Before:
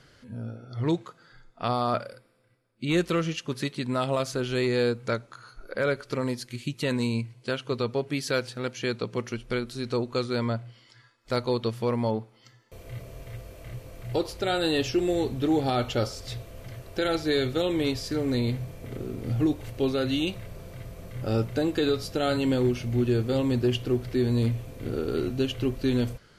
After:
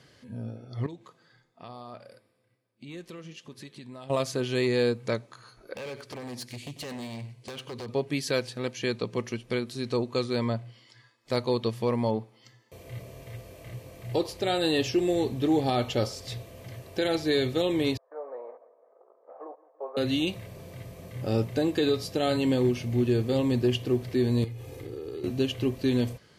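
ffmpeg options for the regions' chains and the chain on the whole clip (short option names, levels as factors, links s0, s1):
-filter_complex "[0:a]asettb=1/sr,asplit=3[s0][s1][s2];[s0]atrim=end=0.864[s3];[s1]atrim=start=0.86:end=4.1,asetpts=PTS-STARTPTS,afade=t=in:d=0.004:c=qsin,afade=t=out:st=3.236:d=0.004:c=qsin,acompressor=threshold=0.01:ratio=2.5:attack=3.2:release=140:knee=1:detection=peak,flanger=delay=3.8:depth=5.6:regen=-87:speed=1.5:shape=triangular[s4];[s2]atrim=start=4.096[s5];[s3][s4]acrossfade=d=0.004:c1=hsin:c2=qsin[s6];[s6][s5]acrossfade=d=0.004:c1=qsin:c2=hsin,asettb=1/sr,asplit=3[s7][s8][s9];[s7]atrim=end=5.754[s10];[s8]atrim=start=5.75:end=7.89,asetpts=PTS-STARTPTS,afade=t=in:d=0.004:c=qsin,afade=t=out:st=2.136:d=0.004:c=qsin,acompressor=threshold=0.0355:ratio=12:attack=3.2:release=140:knee=1:detection=peak,aeval=exprs='0.0266*(abs(mod(val(0)/0.0266+3,4)-2)-1)':c=same,aecho=1:1:94:0.2,atrim=end_sample=94374[s11];[s9]atrim=start=7.886[s12];[s10][s11]acrossfade=d=0.004:c1=hsin:c2=qsin[s13];[s13][s12]acrossfade=d=0.004:c1=qsin:c2=hsin,asettb=1/sr,asplit=3[s14][s15][s16];[s14]atrim=end=17.974[s17];[s15]atrim=start=17.97:end=19.97,asetpts=PTS-STARTPTS,afade=t=in:d=0.004:c=qsin,afade=t=out:st=1.996:d=0.004:c=qsin,agate=range=0.2:threshold=0.0251:ratio=16:release=100:detection=peak,asuperpass=centerf=830:order=8:qfactor=0.98,aecho=1:1:167|334|501|668|835:0.1|0.058|0.0336|0.0195|0.0113,atrim=end_sample=88200[s18];[s16]atrim=start=19.966[s19];[s17][s18]acrossfade=d=0.004:c1=hsin:c2=qsin[s20];[s20][s19]acrossfade=d=0.004:c1=qsin:c2=hsin,asettb=1/sr,asplit=3[s21][s22][s23];[s21]atrim=end=24.444[s24];[s22]atrim=start=24.44:end=25.24,asetpts=PTS-STARTPTS,afade=t=in:d=0.004:c=qsin,afade=t=out:st=0.796:d=0.004:c=qsin,aecho=1:1:2.4:0.91,atrim=end_sample=35280,acompressor=threshold=0.02:ratio=6:attack=3.2:release=140:knee=1:detection=peak[s25];[s23]atrim=start=25.236[s26];[s24][s25]acrossfade=d=0.004:c1=hsin:c2=qsin[s27];[s27][s26]acrossfade=d=0.004:c1=qsin:c2=hsin,highpass=86,equalizer=f=1400:w=6.9:g=-3.5,bandreject=f=1400:w=8"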